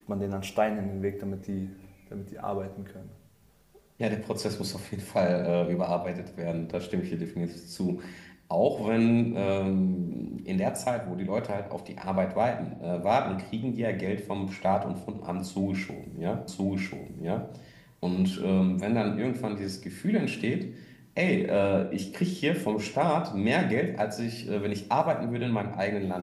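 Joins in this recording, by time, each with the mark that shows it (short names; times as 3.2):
16.48 repeat of the last 1.03 s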